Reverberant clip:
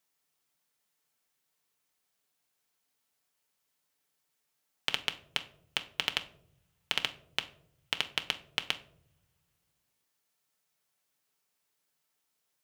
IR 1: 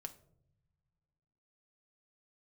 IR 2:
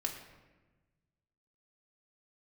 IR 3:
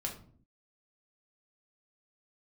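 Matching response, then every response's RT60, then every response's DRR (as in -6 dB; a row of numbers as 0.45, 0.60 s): 1; not exponential, 1.2 s, 0.50 s; 5.5, 1.0, -0.5 dB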